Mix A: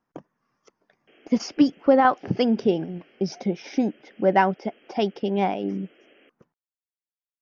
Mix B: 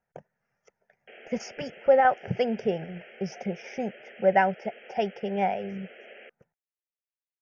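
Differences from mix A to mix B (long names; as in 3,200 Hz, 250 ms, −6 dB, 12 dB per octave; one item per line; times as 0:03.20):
background +11.5 dB
master: add phaser with its sweep stopped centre 1,100 Hz, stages 6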